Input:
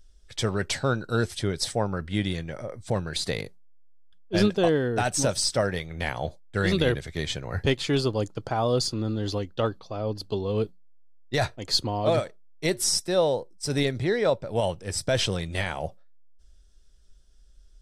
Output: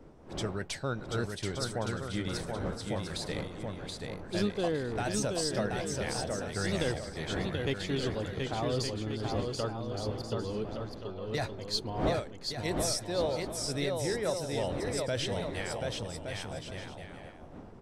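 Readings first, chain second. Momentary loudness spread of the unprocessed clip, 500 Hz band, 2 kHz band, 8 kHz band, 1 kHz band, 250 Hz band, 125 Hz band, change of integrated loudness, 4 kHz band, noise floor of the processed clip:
8 LU, -6.5 dB, -6.5 dB, -7.0 dB, -6.0 dB, -6.0 dB, -6.5 dB, -7.0 dB, -7.0 dB, -47 dBFS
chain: wind noise 440 Hz -37 dBFS; bouncing-ball echo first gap 730 ms, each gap 0.6×, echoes 5; wow and flutter 37 cents; trim -9 dB

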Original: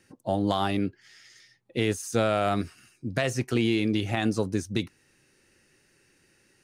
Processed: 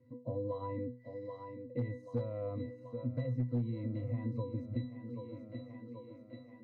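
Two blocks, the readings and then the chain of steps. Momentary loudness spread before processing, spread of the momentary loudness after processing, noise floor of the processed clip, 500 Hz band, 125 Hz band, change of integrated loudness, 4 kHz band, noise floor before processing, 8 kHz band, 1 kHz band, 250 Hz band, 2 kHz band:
9 LU, 12 LU, -56 dBFS, -11.0 dB, -5.0 dB, -12.5 dB, under -25 dB, -65 dBFS, under -40 dB, -18.5 dB, -12.0 dB, -24.5 dB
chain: peaking EQ 510 Hz +3.5 dB 0.77 oct; pitch-class resonator B, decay 0.27 s; thinning echo 782 ms, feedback 64%, high-pass 200 Hz, level -14 dB; hard clipper -28 dBFS, distortion -20 dB; compression 2.5:1, threshold -53 dBFS, peak gain reduction 14.5 dB; tilt shelf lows +5.5 dB, about 1.1 kHz; trim +9.5 dB

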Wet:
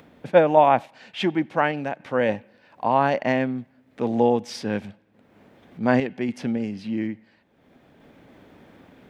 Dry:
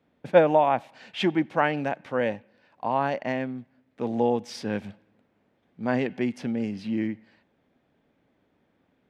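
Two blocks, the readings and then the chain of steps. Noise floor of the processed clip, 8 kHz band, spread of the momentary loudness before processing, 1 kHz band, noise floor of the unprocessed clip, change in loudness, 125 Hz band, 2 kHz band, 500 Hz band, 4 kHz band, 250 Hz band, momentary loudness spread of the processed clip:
-60 dBFS, no reading, 14 LU, +4.5 dB, -70 dBFS, +3.5 dB, +3.5 dB, +3.0 dB, +3.0 dB, +2.0 dB, +3.0 dB, 13 LU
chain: upward compressor, threshold -43 dBFS; random-step tremolo; trim +6.5 dB

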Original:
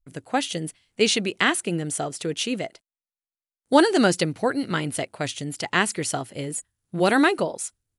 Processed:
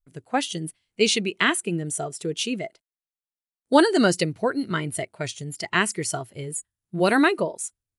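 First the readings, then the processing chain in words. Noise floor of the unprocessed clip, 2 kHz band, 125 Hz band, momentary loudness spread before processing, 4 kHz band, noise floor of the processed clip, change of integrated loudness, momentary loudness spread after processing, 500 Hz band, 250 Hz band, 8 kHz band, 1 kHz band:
under -85 dBFS, 0.0 dB, 0.0 dB, 12 LU, -0.5 dB, under -85 dBFS, -0.5 dB, 14 LU, 0.0 dB, -0.5 dB, -0.5 dB, -1.0 dB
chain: spectral noise reduction 9 dB

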